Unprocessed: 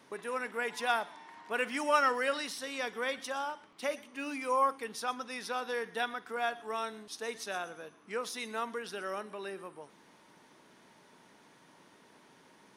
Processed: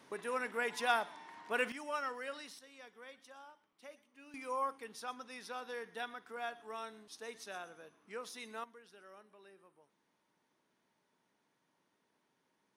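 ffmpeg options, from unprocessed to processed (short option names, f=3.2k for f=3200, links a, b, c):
-af "asetnsamples=n=441:p=0,asendcmd='1.72 volume volume -12dB;2.59 volume volume -19dB;4.34 volume volume -8.5dB;8.64 volume volume -19dB',volume=-1.5dB"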